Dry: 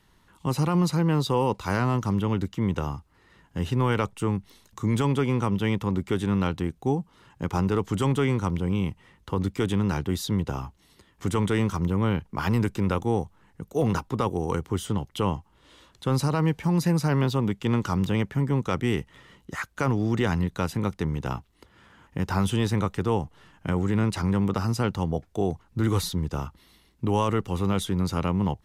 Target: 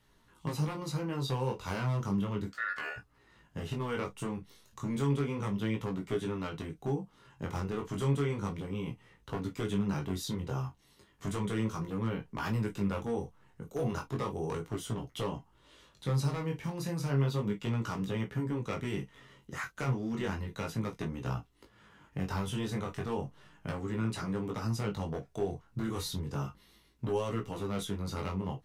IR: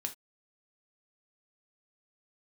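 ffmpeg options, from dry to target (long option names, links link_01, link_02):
-filter_complex "[0:a]acompressor=threshold=-25dB:ratio=3,aeval=exprs='0.106*(abs(mod(val(0)/0.106+3,4)-2)-1)':channel_layout=same,asplit=3[link_01][link_02][link_03];[link_01]afade=type=out:start_time=2.5:duration=0.02[link_04];[link_02]aeval=exprs='val(0)*sin(2*PI*1600*n/s)':channel_layout=same,afade=type=in:start_time=2.5:duration=0.02,afade=type=out:start_time=2.96:duration=0.02[link_05];[link_03]afade=type=in:start_time=2.96:duration=0.02[link_06];[link_04][link_05][link_06]amix=inputs=3:normalize=0,flanger=delay=17:depth=6.1:speed=0.33[link_07];[1:a]atrim=start_sample=2205,asetrate=70560,aresample=44100[link_08];[link_07][link_08]afir=irnorm=-1:irlink=0,volume=2.5dB"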